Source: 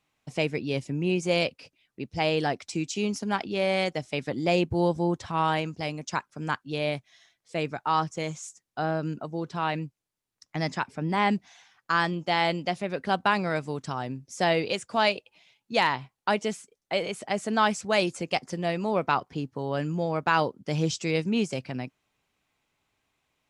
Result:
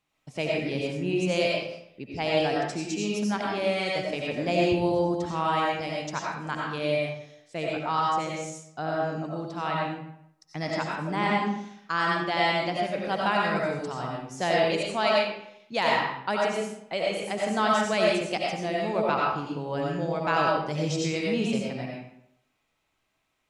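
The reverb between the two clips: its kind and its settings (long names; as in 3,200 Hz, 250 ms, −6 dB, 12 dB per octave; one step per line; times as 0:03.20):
comb and all-pass reverb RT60 0.73 s, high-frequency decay 0.75×, pre-delay 50 ms, DRR −3 dB
level −4 dB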